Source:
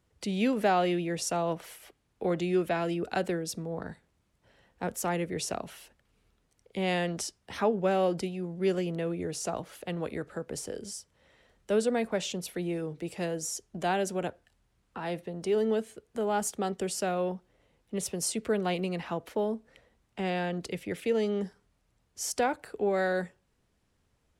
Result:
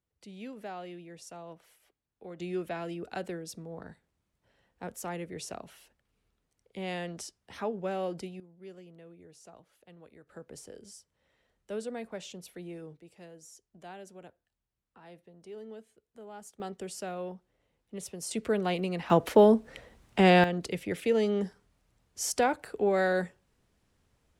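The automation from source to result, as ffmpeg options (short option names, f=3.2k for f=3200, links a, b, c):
-af "asetnsamples=n=441:p=0,asendcmd='2.4 volume volume -7dB;8.4 volume volume -20dB;10.29 volume volume -10dB;12.97 volume volume -17.5dB;16.6 volume volume -7.5dB;18.31 volume volume 0dB;19.1 volume volume 11dB;20.44 volume volume 1.5dB',volume=-16dB"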